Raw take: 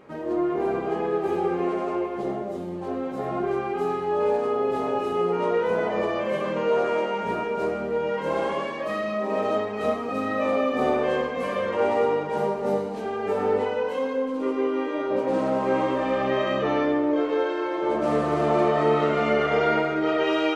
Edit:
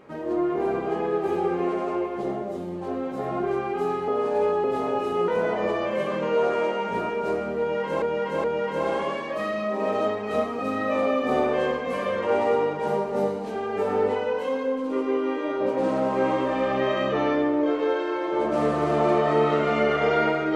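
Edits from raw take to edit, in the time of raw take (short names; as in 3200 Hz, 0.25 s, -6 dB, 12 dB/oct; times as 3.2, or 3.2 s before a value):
4.08–4.64 reverse
5.28–5.62 cut
7.94–8.36 loop, 3 plays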